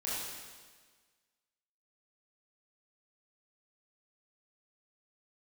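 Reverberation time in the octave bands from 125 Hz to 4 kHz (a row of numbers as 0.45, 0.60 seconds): 1.5, 1.6, 1.5, 1.5, 1.5, 1.5 seconds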